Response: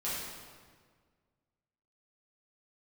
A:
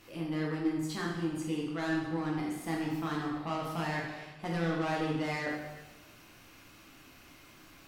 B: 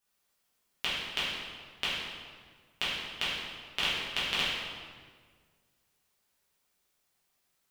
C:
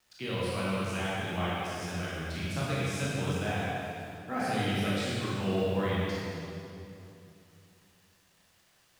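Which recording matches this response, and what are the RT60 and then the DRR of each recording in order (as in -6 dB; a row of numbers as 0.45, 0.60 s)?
B; 1.2, 1.7, 2.8 s; -3.5, -10.5, -8.0 dB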